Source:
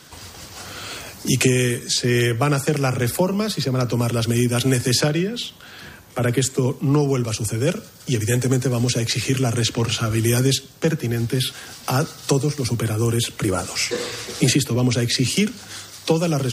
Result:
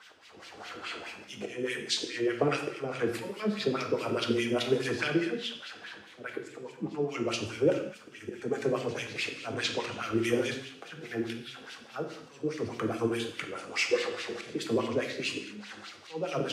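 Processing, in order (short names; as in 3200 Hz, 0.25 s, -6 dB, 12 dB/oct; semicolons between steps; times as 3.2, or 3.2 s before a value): de-hum 52.37 Hz, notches 5; auto swell 0.324 s; thin delay 0.244 s, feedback 74%, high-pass 1600 Hz, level -17 dB; wah 4.8 Hz 310–2900 Hz, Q 2.1; non-linear reverb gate 0.25 s falling, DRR 3.5 dB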